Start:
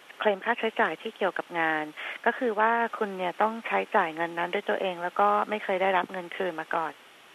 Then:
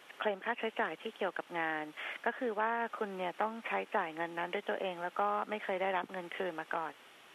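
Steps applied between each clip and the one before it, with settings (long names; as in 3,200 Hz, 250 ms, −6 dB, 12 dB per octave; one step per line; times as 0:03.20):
downward compressor 1.5 to 1, threshold −32 dBFS, peak gain reduction 5.5 dB
level −5 dB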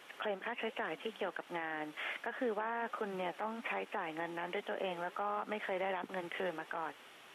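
brickwall limiter −29 dBFS, peak gain reduction 10 dB
flanger 1.3 Hz, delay 1.9 ms, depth 6.2 ms, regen −85%
level +5.5 dB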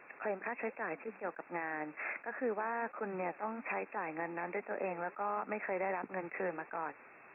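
linear-phase brick-wall low-pass 2,700 Hz
level that may rise only so fast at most 330 dB per second
level +1 dB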